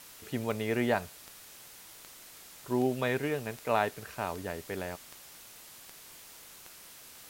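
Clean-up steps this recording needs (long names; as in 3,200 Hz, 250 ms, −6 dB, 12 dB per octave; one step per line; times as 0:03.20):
click removal
noise reduction from a noise print 26 dB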